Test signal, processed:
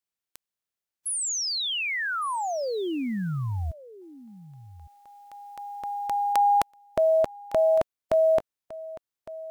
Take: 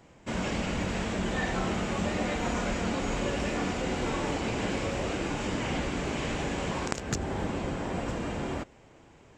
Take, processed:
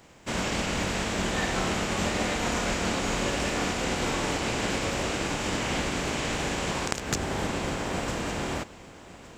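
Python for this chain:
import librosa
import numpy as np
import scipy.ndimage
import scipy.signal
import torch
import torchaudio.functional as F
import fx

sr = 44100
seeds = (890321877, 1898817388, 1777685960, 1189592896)

y = fx.spec_flatten(x, sr, power=0.69)
y = y + 10.0 ** (-17.5 / 20.0) * np.pad(y, (int(1159 * sr / 1000.0), 0))[:len(y)]
y = F.gain(torch.from_numpy(y), 2.0).numpy()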